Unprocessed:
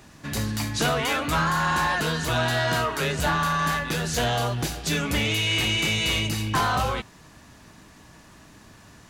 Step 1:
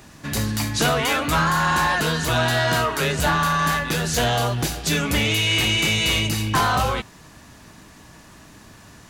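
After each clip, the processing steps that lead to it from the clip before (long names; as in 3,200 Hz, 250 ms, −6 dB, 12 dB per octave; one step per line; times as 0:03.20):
high-shelf EQ 9,200 Hz +3.5 dB
level +3.5 dB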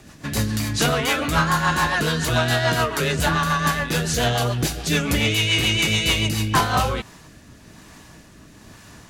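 rotating-speaker cabinet horn 7 Hz, later 1.1 Hz, at 0:06.28
level +2.5 dB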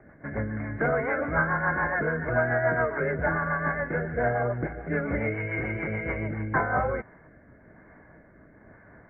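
Chebyshev low-pass with heavy ripple 2,200 Hz, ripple 9 dB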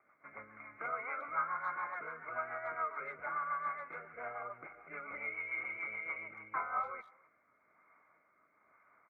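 pair of resonant band-passes 1,700 Hz, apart 0.87 octaves
far-end echo of a speakerphone 270 ms, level −25 dB
level −1 dB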